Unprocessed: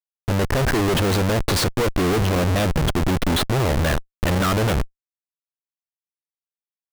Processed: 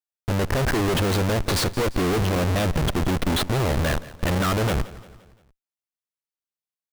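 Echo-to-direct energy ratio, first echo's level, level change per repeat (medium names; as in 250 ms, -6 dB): -17.0 dB, -18.0 dB, -6.5 dB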